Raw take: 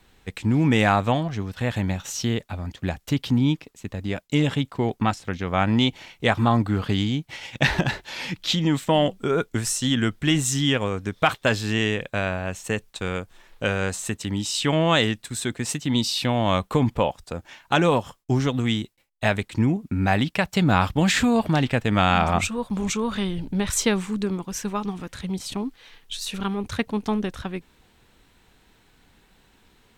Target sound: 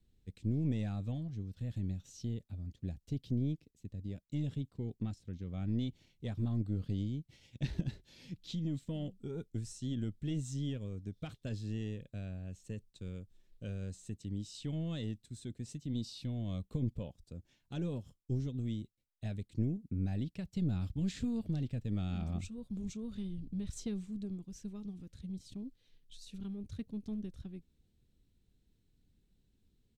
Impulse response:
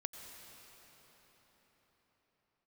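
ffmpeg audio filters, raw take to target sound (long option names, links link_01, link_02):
-filter_complex "[0:a]acrossover=split=9200[link_01][link_02];[link_02]acompressor=threshold=-54dB:ratio=4:attack=1:release=60[link_03];[link_01][link_03]amix=inputs=2:normalize=0,firequalizer=gain_entry='entry(100,0);entry(890,-26);entry(4000,-12)':delay=0.05:min_phase=1,aeval=exprs='1.5*(cos(1*acos(clip(val(0)/1.5,-1,1)))-cos(1*PI/2))+0.335*(cos(3*acos(clip(val(0)/1.5,-1,1)))-cos(3*PI/2))+0.0668*(cos(6*acos(clip(val(0)/1.5,-1,1)))-cos(6*PI/2))+0.0237*(cos(7*acos(clip(val(0)/1.5,-1,1)))-cos(7*PI/2))':channel_layout=same,volume=3dB"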